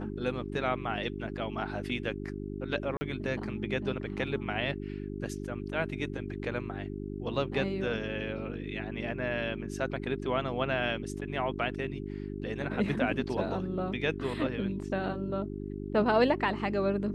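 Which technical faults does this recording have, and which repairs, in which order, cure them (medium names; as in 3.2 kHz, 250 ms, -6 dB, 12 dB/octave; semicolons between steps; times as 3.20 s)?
hum 50 Hz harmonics 8 -38 dBFS
2.97–3.01 s: dropout 40 ms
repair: de-hum 50 Hz, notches 8; interpolate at 2.97 s, 40 ms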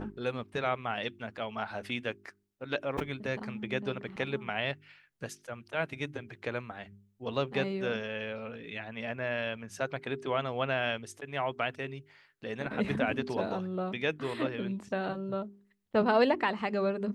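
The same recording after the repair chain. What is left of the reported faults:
nothing left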